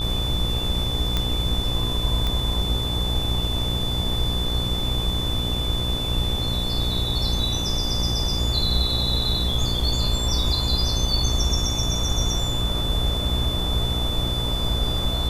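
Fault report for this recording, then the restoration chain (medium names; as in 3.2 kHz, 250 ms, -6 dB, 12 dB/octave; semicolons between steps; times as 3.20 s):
buzz 60 Hz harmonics 21 -28 dBFS
whine 3.5 kHz -27 dBFS
1.17 s: pop -9 dBFS
2.27 s: pop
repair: de-click; de-hum 60 Hz, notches 21; band-stop 3.5 kHz, Q 30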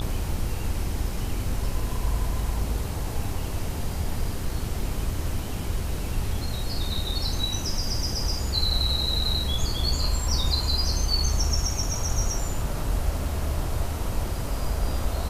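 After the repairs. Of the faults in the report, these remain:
nothing left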